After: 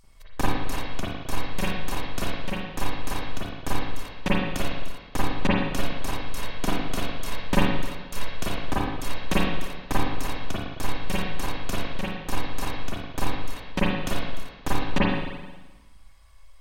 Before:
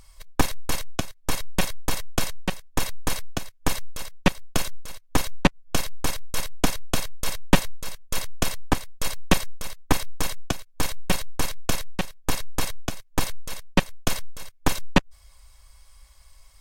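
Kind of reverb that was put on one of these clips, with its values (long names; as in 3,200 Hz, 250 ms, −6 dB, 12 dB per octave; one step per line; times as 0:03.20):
spring reverb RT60 1.2 s, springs 38/43/52 ms, chirp 25 ms, DRR −8 dB
level −9 dB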